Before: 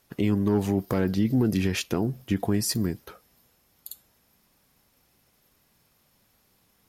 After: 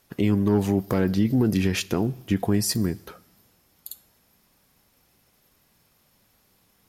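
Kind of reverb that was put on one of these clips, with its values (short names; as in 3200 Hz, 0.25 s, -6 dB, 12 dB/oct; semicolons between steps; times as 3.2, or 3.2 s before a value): two-slope reverb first 0.88 s, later 2.6 s, DRR 20 dB; gain +2 dB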